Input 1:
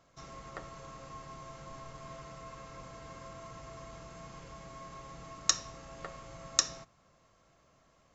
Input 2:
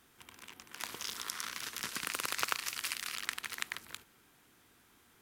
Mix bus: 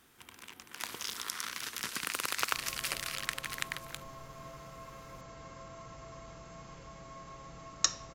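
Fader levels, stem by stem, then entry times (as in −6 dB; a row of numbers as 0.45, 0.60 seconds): −1.0, +1.5 decibels; 2.35, 0.00 seconds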